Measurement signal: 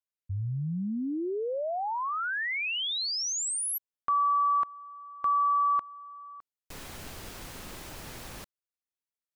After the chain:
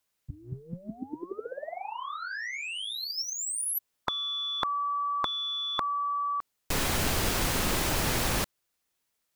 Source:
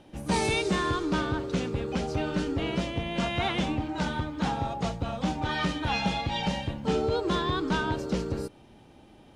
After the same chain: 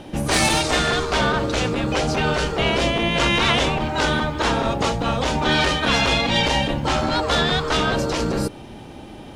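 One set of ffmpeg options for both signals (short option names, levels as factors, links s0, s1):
-af "aeval=exprs='0.15*sin(PI/2*1.58*val(0)/0.15)':c=same,afftfilt=real='re*lt(hypot(re,im),0.316)':imag='im*lt(hypot(re,im),0.316)':win_size=1024:overlap=0.75,volume=2.37"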